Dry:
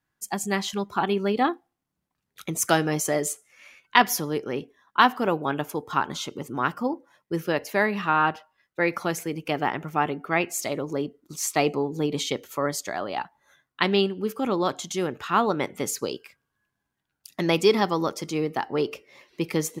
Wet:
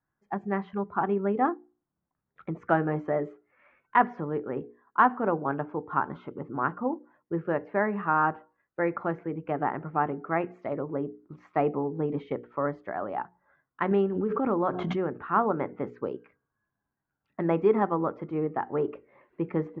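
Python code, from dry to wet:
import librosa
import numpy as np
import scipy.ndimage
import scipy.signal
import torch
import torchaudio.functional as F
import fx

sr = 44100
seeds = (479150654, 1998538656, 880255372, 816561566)

y = scipy.signal.sosfilt(scipy.signal.butter(4, 1600.0, 'lowpass', fs=sr, output='sos'), x)
y = fx.hum_notches(y, sr, base_hz=60, count=8)
y = fx.pre_swell(y, sr, db_per_s=29.0, at=(13.91, 15.14))
y = F.gain(torch.from_numpy(y), -2.0).numpy()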